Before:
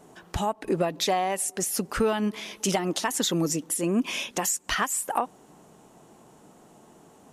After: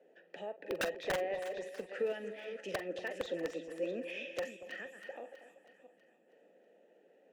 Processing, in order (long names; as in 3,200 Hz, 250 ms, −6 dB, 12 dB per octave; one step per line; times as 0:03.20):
delay that plays each chunk backwards 326 ms, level −9 dB
Chebyshev high-pass filter 170 Hz, order 5
gain on a spectral selection 0:04.49–0:06.27, 360–10,000 Hz −7 dB
formant filter e
wrap-around overflow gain 27 dB
high-shelf EQ 4,500 Hz −9.5 dB
echo with a time of its own for lows and highs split 970 Hz, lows 235 ms, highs 322 ms, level −12.5 dB
on a send at −11.5 dB: convolution reverb, pre-delay 40 ms
on the sum: level +1 dB